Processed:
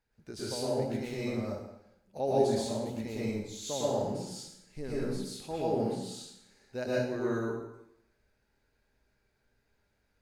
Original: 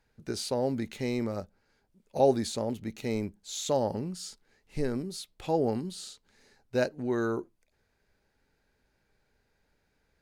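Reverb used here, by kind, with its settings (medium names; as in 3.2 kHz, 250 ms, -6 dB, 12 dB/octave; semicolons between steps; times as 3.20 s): plate-style reverb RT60 0.83 s, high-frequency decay 0.9×, pre-delay 100 ms, DRR -7.5 dB; trim -10 dB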